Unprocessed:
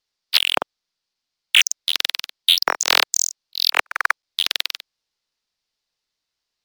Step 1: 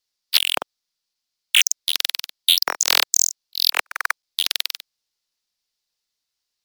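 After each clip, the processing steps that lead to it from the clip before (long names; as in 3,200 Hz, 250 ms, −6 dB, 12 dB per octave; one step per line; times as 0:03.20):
high-shelf EQ 4,900 Hz +11.5 dB
level −5 dB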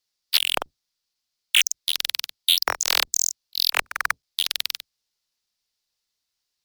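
sub-octave generator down 2 octaves, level −2 dB
brickwall limiter −7 dBFS, peak gain reduction 5.5 dB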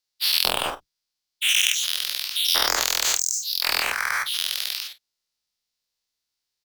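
every bin's largest magnitude spread in time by 240 ms
on a send: ambience of single reflections 31 ms −13 dB, 49 ms −17 dB
on the sum: level −8 dB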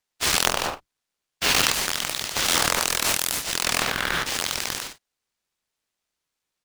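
short delay modulated by noise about 1,400 Hz, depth 0.07 ms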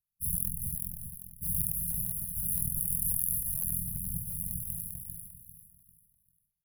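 linear-phase brick-wall band-stop 200–10,000 Hz
repeating echo 396 ms, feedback 33%, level −4.5 dB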